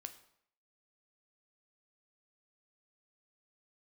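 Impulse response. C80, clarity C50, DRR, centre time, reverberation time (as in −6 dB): 16.0 dB, 13.0 dB, 7.5 dB, 8 ms, 0.70 s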